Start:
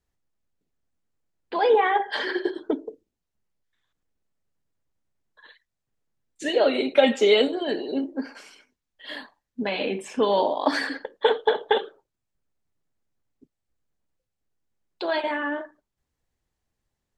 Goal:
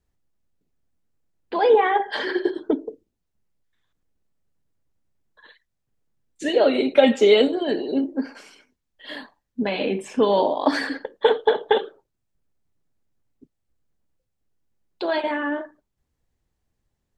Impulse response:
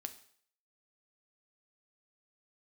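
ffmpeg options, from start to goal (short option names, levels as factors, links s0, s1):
-af "lowshelf=f=480:g=6"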